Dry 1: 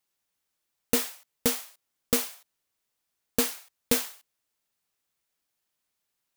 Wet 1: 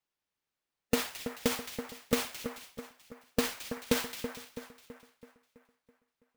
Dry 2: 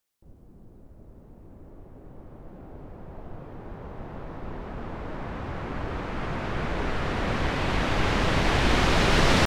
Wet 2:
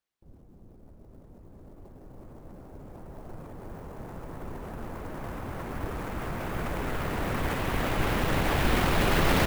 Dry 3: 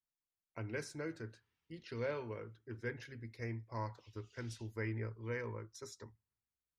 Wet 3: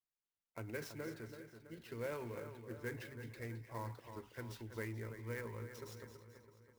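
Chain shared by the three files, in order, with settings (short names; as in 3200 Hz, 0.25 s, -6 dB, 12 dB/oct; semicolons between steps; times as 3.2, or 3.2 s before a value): LPF 4000 Hz 6 dB/oct; transient shaper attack +2 dB, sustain +7 dB; split-band echo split 2100 Hz, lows 0.329 s, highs 0.217 s, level -9 dB; harmonic-percussive split percussive +3 dB; clock jitter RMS 0.024 ms; gain -5.5 dB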